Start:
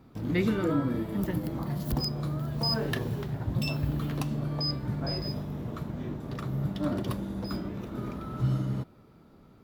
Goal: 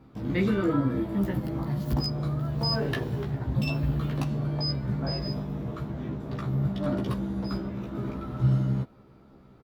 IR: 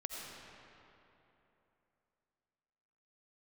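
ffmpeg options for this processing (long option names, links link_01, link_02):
-filter_complex "[0:a]highshelf=frequency=5700:gain=-9,asplit=2[link_01][link_02];[link_02]adelay=15,volume=-2.5dB[link_03];[link_01][link_03]amix=inputs=2:normalize=0"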